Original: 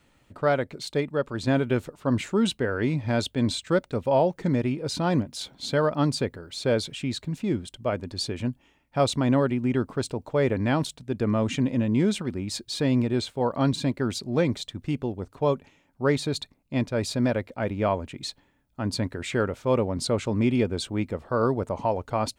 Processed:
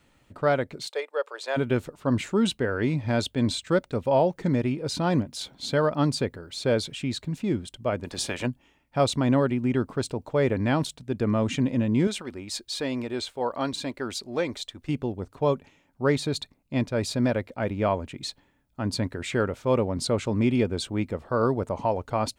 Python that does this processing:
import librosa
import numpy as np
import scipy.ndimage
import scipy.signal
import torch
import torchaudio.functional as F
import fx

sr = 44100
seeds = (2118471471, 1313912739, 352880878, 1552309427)

y = fx.ellip_highpass(x, sr, hz=460.0, order=4, stop_db=70, at=(0.87, 1.56), fade=0.02)
y = fx.spec_clip(y, sr, under_db=20, at=(8.04, 8.45), fade=0.02)
y = fx.peak_eq(y, sr, hz=140.0, db=-14.0, octaves=1.8, at=(12.07, 14.89))